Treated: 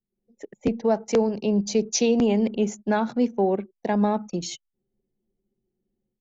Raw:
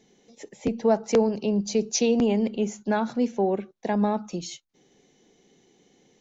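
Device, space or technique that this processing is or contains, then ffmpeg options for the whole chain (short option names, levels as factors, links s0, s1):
voice memo with heavy noise removal: -af "anlmdn=0.251,dynaudnorm=f=120:g=3:m=4.47,volume=0.355"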